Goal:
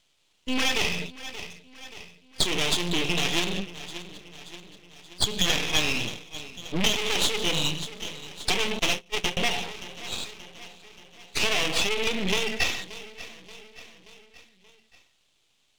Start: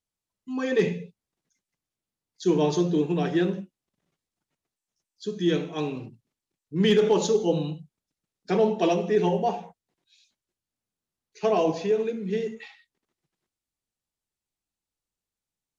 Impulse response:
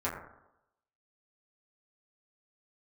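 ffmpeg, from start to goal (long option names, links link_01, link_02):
-filter_complex "[0:a]aeval=exprs='(tanh(22.4*val(0)+0.2)-tanh(0.2))/22.4':channel_layout=same,asplit=2[link_01][link_02];[link_02]aecho=0:1:579|1158|1737|2316:0.0708|0.0389|0.0214|0.0118[link_03];[link_01][link_03]amix=inputs=2:normalize=0,aexciter=amount=6.5:drive=5.4:freq=2000,lowpass=frequency=3200:width_type=q:width=2.1,asplit=2[link_04][link_05];[link_05]acontrast=62,volume=-2.5dB[link_06];[link_04][link_06]amix=inputs=2:normalize=0,asettb=1/sr,asplit=3[link_07][link_08][link_09];[link_07]atrim=end=8.794[link_10];[link_08]atrim=start=8.79:end=9.37,asetpts=PTS-STARTPTS,afade=type=in:duration=0.004:curve=qsin,afade=type=out:start_time=0.576:duration=0.004:curve=qsin,agate=range=-30dB:threshold=-14dB:ratio=16:detection=peak[link_11];[link_09]atrim=start=9.366[link_12];[link_10][link_11]acrossfade=duration=0.004:curve1=hsin:curve2=qsin[link_13];[link_13][link_12]acrossfade=duration=0.004:curve1=qsin:curve2=hsin,acompressor=threshold=-22dB:ratio=6,asettb=1/sr,asplit=3[link_14][link_15][link_16];[link_14]atrim=end=5.444[link_17];[link_15]atrim=start=5.44:end=6.05,asetpts=PTS-STARTPTS,afade=type=in:duration=0.004:curve=qsin,afade=type=out:start_time=0.606:duration=0.004:curve=qsin,equalizer=frequency=1700:width=3.1:gain=10[link_18];[link_16]atrim=start=6.046[link_19];[link_17][link_18]acrossfade=duration=0.004:curve1=hsin:curve2=qsin[link_20];[link_20][link_19]acrossfade=duration=0.004:curve1=qsin:curve2=hsin,aeval=exprs='max(val(0),0)':channel_layout=same,volume=4.5dB"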